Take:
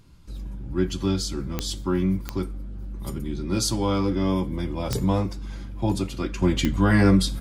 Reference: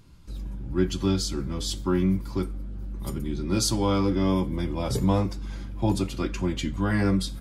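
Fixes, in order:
click removal
level 0 dB, from 0:06.42 −6 dB

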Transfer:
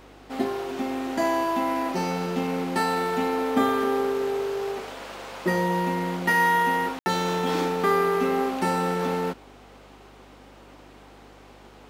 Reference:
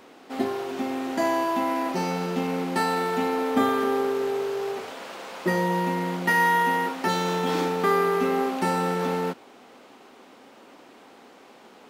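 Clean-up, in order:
hum removal 49.8 Hz, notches 8
ambience match 0:06.99–0:07.06

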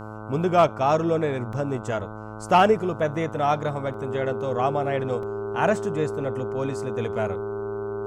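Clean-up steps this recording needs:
hum removal 107.7 Hz, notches 14
notch filter 400 Hz, Q 30
repair the gap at 0:01.53/0:03.94/0:05.23, 1.8 ms

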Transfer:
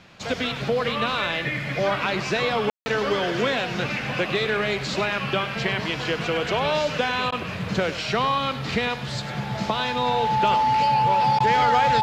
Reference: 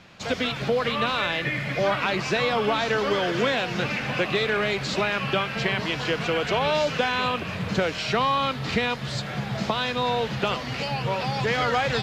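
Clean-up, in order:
notch filter 870 Hz, Q 30
ambience match 0:02.70–0:02.86
repair the gap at 0:07.31/0:11.39, 11 ms
echo removal 101 ms −13 dB

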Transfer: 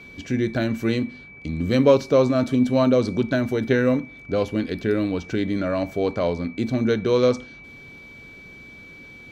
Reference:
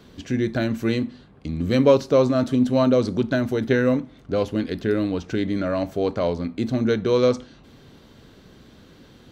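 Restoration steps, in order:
notch filter 2,300 Hz, Q 30

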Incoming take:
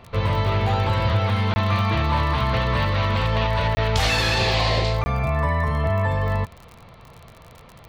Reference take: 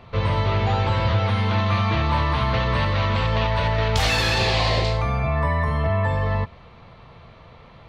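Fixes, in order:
click removal
repair the gap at 0:01.54/0:03.75/0:05.04, 20 ms

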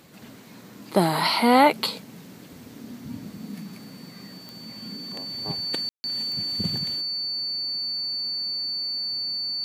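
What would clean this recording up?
click removal
notch filter 4,500 Hz, Q 30
ambience match 0:05.89–0:06.04

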